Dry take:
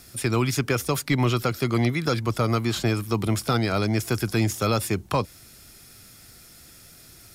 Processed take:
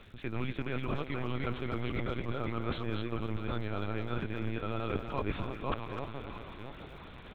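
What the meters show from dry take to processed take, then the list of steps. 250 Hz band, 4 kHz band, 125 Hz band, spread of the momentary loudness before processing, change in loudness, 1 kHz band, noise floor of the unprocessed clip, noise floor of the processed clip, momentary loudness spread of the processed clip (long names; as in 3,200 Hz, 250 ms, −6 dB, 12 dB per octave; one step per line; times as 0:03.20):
−11.0 dB, −14.0 dB, −12.0 dB, 3 LU, −12.5 dB, −10.0 dB, −49 dBFS, −49 dBFS, 9 LU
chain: delay that plays each chunk backwards 319 ms, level −1.5 dB
on a send: delay that swaps between a low-pass and a high-pass 334 ms, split 940 Hz, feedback 68%, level −14 dB
on the sum: linear-prediction vocoder at 8 kHz pitch kept
reversed playback
downward compressor 16 to 1, threshold −29 dBFS, peak gain reduction 16 dB
reversed playback
far-end echo of a speakerphone 250 ms, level −8 dB
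surface crackle 110 per second −56 dBFS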